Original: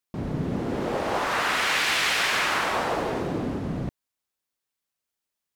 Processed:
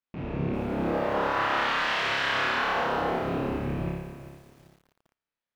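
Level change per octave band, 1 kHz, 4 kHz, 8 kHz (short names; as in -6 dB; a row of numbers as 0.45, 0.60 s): 0.0, -5.5, -15.5 dB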